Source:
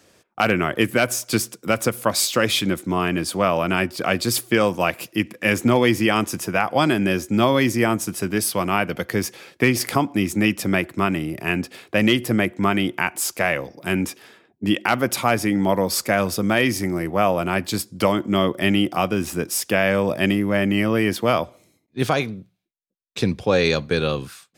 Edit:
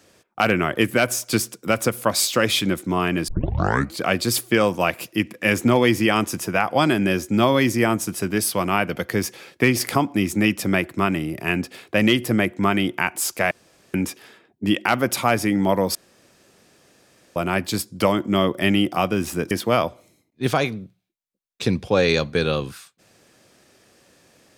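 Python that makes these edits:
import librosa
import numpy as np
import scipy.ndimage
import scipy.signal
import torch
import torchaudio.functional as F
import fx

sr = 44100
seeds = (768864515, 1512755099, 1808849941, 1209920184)

y = fx.edit(x, sr, fx.tape_start(start_s=3.28, length_s=0.72),
    fx.room_tone_fill(start_s=13.51, length_s=0.43),
    fx.room_tone_fill(start_s=15.95, length_s=1.41),
    fx.cut(start_s=19.51, length_s=1.56), tone=tone)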